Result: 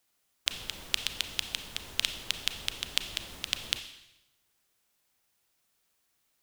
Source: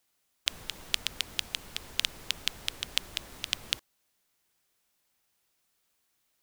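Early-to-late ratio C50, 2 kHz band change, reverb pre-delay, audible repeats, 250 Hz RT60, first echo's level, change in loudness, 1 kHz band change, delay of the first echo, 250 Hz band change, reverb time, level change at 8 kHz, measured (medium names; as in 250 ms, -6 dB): 11.0 dB, +0.5 dB, 30 ms, no echo, 1.0 s, no echo, +0.5 dB, +0.5 dB, no echo, +0.5 dB, 0.90 s, +0.5 dB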